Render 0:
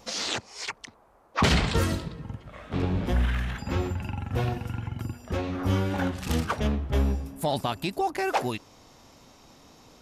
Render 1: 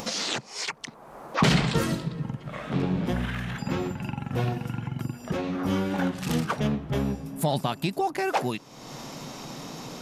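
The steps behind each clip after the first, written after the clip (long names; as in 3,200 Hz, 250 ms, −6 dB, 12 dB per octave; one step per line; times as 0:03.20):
upward compression, threshold −26 dBFS
low shelf with overshoot 110 Hz −8 dB, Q 3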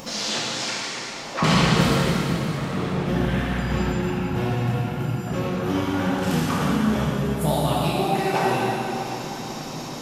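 dense smooth reverb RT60 3.8 s, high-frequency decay 0.85×, DRR −8 dB
level −3 dB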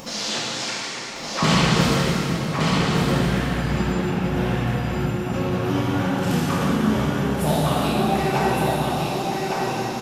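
single-tap delay 1,163 ms −3.5 dB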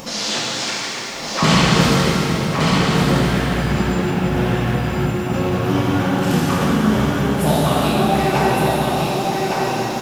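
feedback echo at a low word length 155 ms, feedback 80%, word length 7 bits, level −13.5 dB
level +4 dB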